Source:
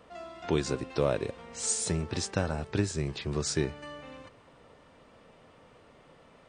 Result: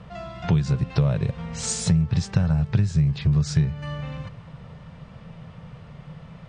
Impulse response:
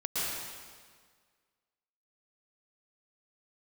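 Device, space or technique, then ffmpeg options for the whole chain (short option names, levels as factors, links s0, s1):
jukebox: -af "lowpass=5900,lowshelf=f=220:t=q:w=3:g=11,acompressor=threshold=0.0501:ratio=4,volume=2.37"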